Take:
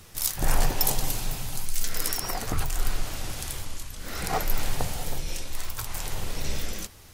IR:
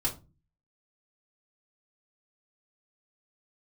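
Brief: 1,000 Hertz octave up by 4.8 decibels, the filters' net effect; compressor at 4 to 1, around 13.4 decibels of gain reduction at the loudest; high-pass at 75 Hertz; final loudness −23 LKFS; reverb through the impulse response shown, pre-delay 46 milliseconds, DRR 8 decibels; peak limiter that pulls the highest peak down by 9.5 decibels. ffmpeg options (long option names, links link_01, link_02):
-filter_complex "[0:a]highpass=75,equalizer=frequency=1000:width_type=o:gain=6.5,acompressor=threshold=-36dB:ratio=4,alimiter=level_in=0.5dB:limit=-24dB:level=0:latency=1,volume=-0.5dB,asplit=2[link_01][link_02];[1:a]atrim=start_sample=2205,adelay=46[link_03];[link_02][link_03]afir=irnorm=-1:irlink=0,volume=-13.5dB[link_04];[link_01][link_04]amix=inputs=2:normalize=0,volume=15dB"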